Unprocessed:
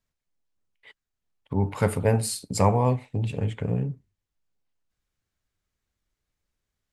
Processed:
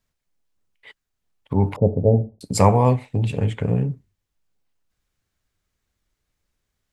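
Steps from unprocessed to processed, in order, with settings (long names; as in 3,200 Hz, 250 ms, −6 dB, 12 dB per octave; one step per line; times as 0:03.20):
0:01.76–0:02.41: Butterworth low-pass 690 Hz 48 dB per octave
level +5.5 dB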